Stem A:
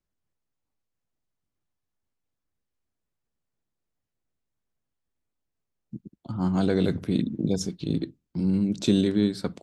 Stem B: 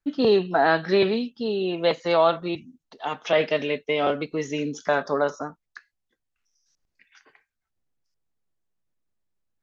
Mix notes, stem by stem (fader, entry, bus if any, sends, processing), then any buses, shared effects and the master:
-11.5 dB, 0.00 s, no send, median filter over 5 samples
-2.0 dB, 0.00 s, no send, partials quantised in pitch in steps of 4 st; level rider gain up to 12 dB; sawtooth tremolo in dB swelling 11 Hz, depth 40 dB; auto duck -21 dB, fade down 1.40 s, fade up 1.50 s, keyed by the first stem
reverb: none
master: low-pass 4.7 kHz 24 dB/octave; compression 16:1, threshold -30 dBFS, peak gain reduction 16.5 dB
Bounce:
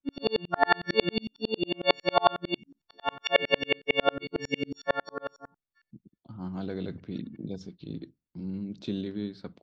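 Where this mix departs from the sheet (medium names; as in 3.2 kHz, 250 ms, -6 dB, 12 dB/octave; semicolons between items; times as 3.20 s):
stem A: missing median filter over 5 samples; master: missing compression 16:1, threshold -30 dBFS, peak gain reduction 16.5 dB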